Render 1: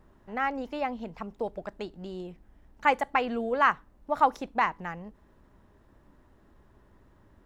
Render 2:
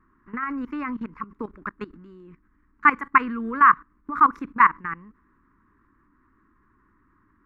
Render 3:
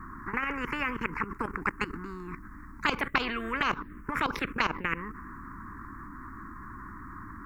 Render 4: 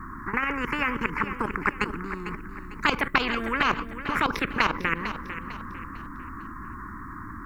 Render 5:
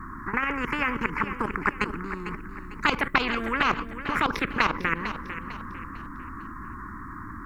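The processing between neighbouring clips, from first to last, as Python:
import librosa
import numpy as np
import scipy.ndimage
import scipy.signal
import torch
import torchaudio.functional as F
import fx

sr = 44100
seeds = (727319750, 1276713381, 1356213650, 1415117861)

y1 = fx.curve_eq(x, sr, hz=(150.0, 300.0, 710.0, 1100.0, 2200.0, 3200.0), db=(0, 9, -22, 15, 6, -11))
y1 = fx.level_steps(y1, sr, step_db=17)
y1 = y1 * librosa.db_to_amplitude(5.0)
y2 = fx.env_phaser(y1, sr, low_hz=510.0, high_hz=1900.0, full_db=-14.0)
y2 = fx.spectral_comp(y2, sr, ratio=4.0)
y3 = fx.echo_feedback(y2, sr, ms=450, feedback_pct=39, wet_db=-11.0)
y3 = y3 * librosa.db_to_amplitude(4.5)
y4 = fx.doppler_dist(y3, sr, depth_ms=0.11)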